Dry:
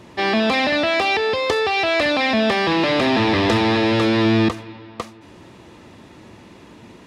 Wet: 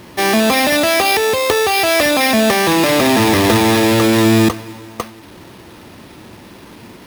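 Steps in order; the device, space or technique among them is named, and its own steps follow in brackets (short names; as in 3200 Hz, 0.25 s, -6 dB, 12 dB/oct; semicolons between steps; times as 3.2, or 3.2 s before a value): early 8-bit sampler (sample-rate reducer 7400 Hz, jitter 0%; bit-crush 8-bit); gain +5 dB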